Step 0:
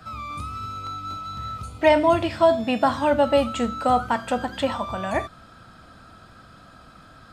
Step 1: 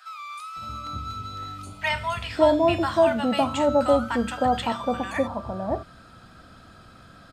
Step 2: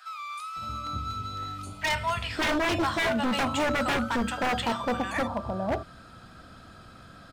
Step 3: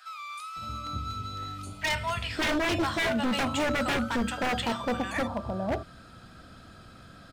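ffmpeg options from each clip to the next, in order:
ffmpeg -i in.wav -filter_complex "[0:a]acrossover=split=1000[link_01][link_02];[link_01]adelay=560[link_03];[link_03][link_02]amix=inputs=2:normalize=0" out.wav
ffmpeg -i in.wav -af "aeval=exprs='0.0944*(abs(mod(val(0)/0.0944+3,4)-2)-1)':channel_layout=same" out.wav
ffmpeg -i in.wav -af "equalizer=frequency=1000:width=1.2:gain=-3.5" out.wav

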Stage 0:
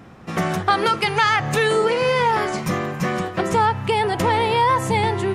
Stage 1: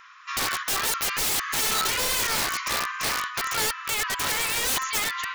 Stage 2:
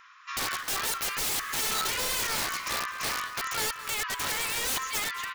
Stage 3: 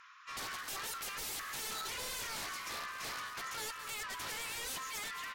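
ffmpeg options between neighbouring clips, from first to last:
ffmpeg -i in.wav -af "afftfilt=real='re*between(b*sr/4096,990,7200)':imag='im*between(b*sr/4096,990,7200)':win_size=4096:overlap=0.75,aeval=exprs='(mod(15*val(0)+1,2)-1)/15':channel_layout=same,volume=3.5dB" out.wav
ffmpeg -i in.wav -af "aecho=1:1:213:0.15,volume=-4.5dB" out.wav
ffmpeg -i in.wav -af "asoftclip=type=tanh:threshold=-36dB,volume=-3.5dB" -ar 44100 -c:a libvorbis -b:a 64k out.ogg

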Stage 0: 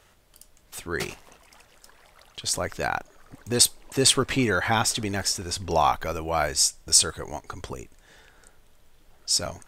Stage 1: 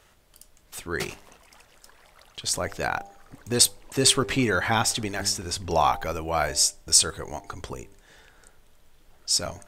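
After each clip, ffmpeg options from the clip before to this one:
ffmpeg -i in.wav -af "bandreject=frequency=99.38:width_type=h:width=4,bandreject=frequency=198.76:width_type=h:width=4,bandreject=frequency=298.14:width_type=h:width=4,bandreject=frequency=397.52:width_type=h:width=4,bandreject=frequency=496.9:width_type=h:width=4,bandreject=frequency=596.28:width_type=h:width=4,bandreject=frequency=695.66:width_type=h:width=4,bandreject=frequency=795.04:width_type=h:width=4,bandreject=frequency=894.42:width_type=h:width=4" out.wav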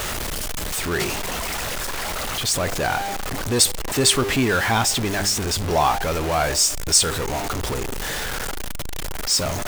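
ffmpeg -i in.wav -af "aeval=exprs='val(0)+0.5*0.0891*sgn(val(0))':channel_layout=same" out.wav

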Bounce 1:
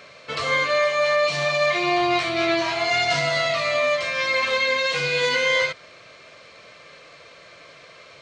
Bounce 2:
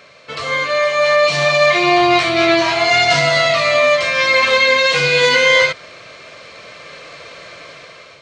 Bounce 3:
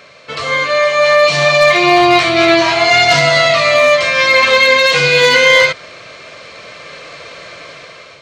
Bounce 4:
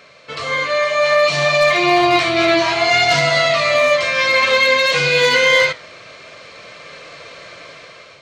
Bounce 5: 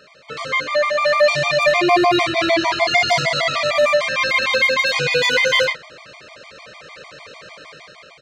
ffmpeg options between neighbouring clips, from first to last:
ffmpeg -i in.wav -af "dynaudnorm=framelen=370:gausssize=5:maxgain=10dB,volume=1dB" out.wav
ffmpeg -i in.wav -af "volume=5dB,asoftclip=hard,volume=-5dB,volume=3.5dB" out.wav
ffmpeg -i in.wav -af "flanger=delay=4:depth=7.1:regen=-83:speed=0.58:shape=triangular" out.wav
ffmpeg -i in.wav -filter_complex "[0:a]asplit=2[link_01][link_02];[link_02]adelay=37,volume=-8dB[link_03];[link_01][link_03]amix=inputs=2:normalize=0,afftfilt=real='re*gt(sin(2*PI*6.6*pts/sr)*(1-2*mod(floor(b*sr/1024/620),2)),0)':imag='im*gt(sin(2*PI*6.6*pts/sr)*(1-2*mod(floor(b*sr/1024/620),2)),0)':win_size=1024:overlap=0.75" out.wav

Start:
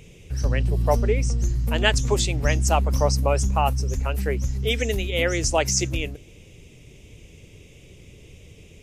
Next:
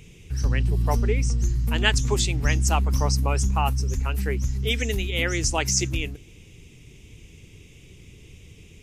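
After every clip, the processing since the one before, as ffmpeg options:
ffmpeg -i in.wav -af "equalizer=frequency=580:width_type=o:width=0.63:gain=-10.5" out.wav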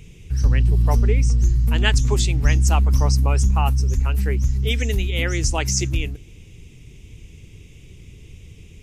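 ffmpeg -i in.wav -af "lowshelf=frequency=140:gain=7.5" out.wav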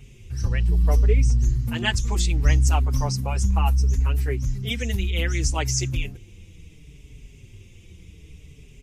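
ffmpeg -i in.wav -filter_complex "[0:a]asplit=2[link_01][link_02];[link_02]adelay=5.1,afreqshift=-0.68[link_03];[link_01][link_03]amix=inputs=2:normalize=1" out.wav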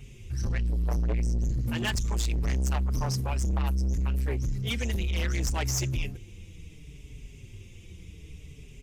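ffmpeg -i in.wav -af "asoftclip=type=tanh:threshold=-24dB" out.wav

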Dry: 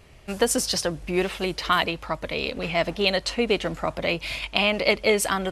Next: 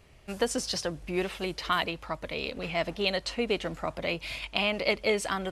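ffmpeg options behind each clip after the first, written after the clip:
ffmpeg -i in.wav -filter_complex "[0:a]acrossover=split=8200[link_01][link_02];[link_02]acompressor=threshold=-43dB:ratio=4:attack=1:release=60[link_03];[link_01][link_03]amix=inputs=2:normalize=0,volume=-6dB" out.wav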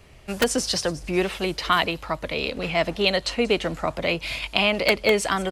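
ffmpeg -i in.wav -filter_complex "[0:a]acrossover=split=370|810|5400[link_01][link_02][link_03][link_04];[link_02]aeval=exprs='(mod(14.1*val(0)+1,2)-1)/14.1':channel_layout=same[link_05];[link_04]aecho=1:1:184|368|552|736:0.251|0.0929|0.0344|0.0127[link_06];[link_01][link_05][link_03][link_06]amix=inputs=4:normalize=0,volume=7dB" out.wav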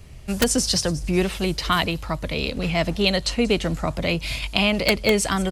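ffmpeg -i in.wav -af "bass=frequency=250:gain=11,treble=frequency=4000:gain=7,volume=-1.5dB" out.wav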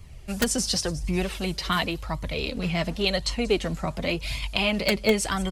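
ffmpeg -i in.wav -af "flanger=delay=0.9:depth=4.4:regen=38:speed=0.91:shape=sinusoidal" out.wav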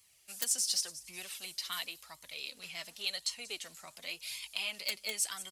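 ffmpeg -i in.wav -af "aderivative,asoftclip=type=tanh:threshold=-16dB,volume=-2dB" out.wav

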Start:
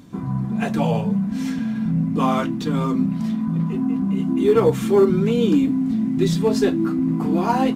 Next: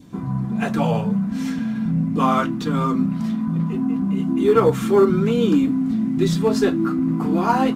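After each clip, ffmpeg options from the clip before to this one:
ffmpeg -i in.wav -af "adynamicequalizer=threshold=0.00891:dfrequency=1300:dqfactor=2.6:tfrequency=1300:tqfactor=2.6:attack=5:release=100:ratio=0.375:range=3.5:mode=boostabove:tftype=bell" out.wav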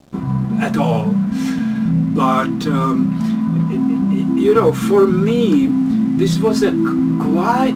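ffmpeg -i in.wav -filter_complex "[0:a]asplit=2[link_01][link_02];[link_02]alimiter=limit=-14.5dB:level=0:latency=1:release=171,volume=0dB[link_03];[link_01][link_03]amix=inputs=2:normalize=0,aeval=exprs='sgn(val(0))*max(abs(val(0))-0.0112,0)':channel_layout=same" out.wav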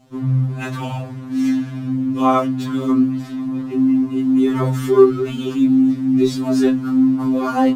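ffmpeg -i in.wav -af "afftfilt=real='re*2.45*eq(mod(b,6),0)':imag='im*2.45*eq(mod(b,6),0)':win_size=2048:overlap=0.75,volume=-2dB" out.wav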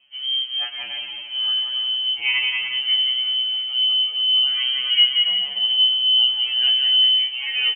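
ffmpeg -i in.wav -af "aecho=1:1:180|288|352.8|391.7|415:0.631|0.398|0.251|0.158|0.1,lowpass=frequency=2800:width_type=q:width=0.5098,lowpass=frequency=2800:width_type=q:width=0.6013,lowpass=frequency=2800:width_type=q:width=0.9,lowpass=frequency=2800:width_type=q:width=2.563,afreqshift=-3300,volume=-6.5dB" out.wav

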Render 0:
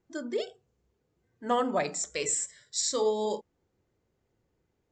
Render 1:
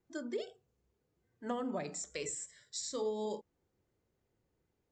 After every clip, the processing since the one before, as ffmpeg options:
ffmpeg -i in.wav -filter_complex "[0:a]acrossover=split=360[link_01][link_02];[link_02]acompressor=threshold=-34dB:ratio=6[link_03];[link_01][link_03]amix=inputs=2:normalize=0,volume=-4.5dB" out.wav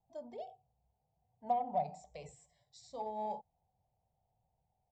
ffmpeg -i in.wav -af "firequalizer=gain_entry='entry(150,0);entry(330,-22);entry(750,13);entry(1400,-29);entry(2200,-14);entry(4800,-16);entry(6800,-22)':delay=0.05:min_phase=1,aeval=exprs='0.0668*(cos(1*acos(clip(val(0)/0.0668,-1,1)))-cos(1*PI/2))+0.000841*(cos(7*acos(clip(val(0)/0.0668,-1,1)))-cos(7*PI/2))':channel_layout=same,volume=1.5dB" out.wav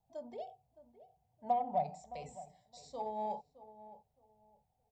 ffmpeg -i in.wav -filter_complex "[0:a]asplit=2[link_01][link_02];[link_02]adelay=616,lowpass=frequency=1200:poles=1,volume=-15dB,asplit=2[link_03][link_04];[link_04]adelay=616,lowpass=frequency=1200:poles=1,volume=0.24,asplit=2[link_05][link_06];[link_06]adelay=616,lowpass=frequency=1200:poles=1,volume=0.24[link_07];[link_01][link_03][link_05][link_07]amix=inputs=4:normalize=0,volume=1dB" out.wav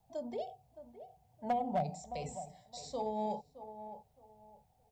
ffmpeg -i in.wav -filter_complex "[0:a]acrossover=split=480|3000[link_01][link_02][link_03];[link_02]acompressor=threshold=-56dB:ratio=2[link_04];[link_01][link_04][link_03]amix=inputs=3:normalize=0,volume=34dB,asoftclip=hard,volume=-34dB,volume=8.5dB" out.wav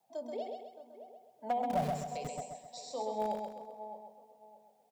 ffmpeg -i in.wav -filter_complex "[0:a]acrossover=split=220|420|4300[link_01][link_02][link_03][link_04];[link_01]acrusher=bits=6:mix=0:aa=0.000001[link_05];[link_05][link_02][link_03][link_04]amix=inputs=4:normalize=0,aecho=1:1:131|262|393|524|655:0.596|0.244|0.1|0.0411|0.0168" out.wav

